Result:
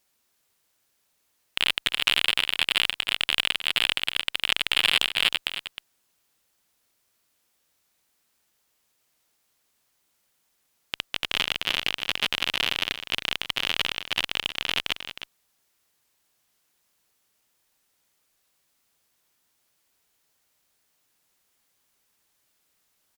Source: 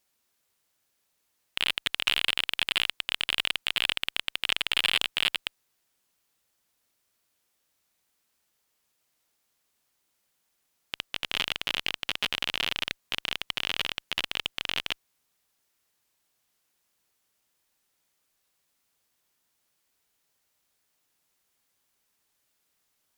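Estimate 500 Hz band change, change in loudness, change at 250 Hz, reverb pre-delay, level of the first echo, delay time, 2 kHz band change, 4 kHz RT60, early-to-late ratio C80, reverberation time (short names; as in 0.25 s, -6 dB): +4.0 dB, +3.5 dB, +4.0 dB, none, -11.0 dB, 0.312 s, +4.0 dB, none, none, none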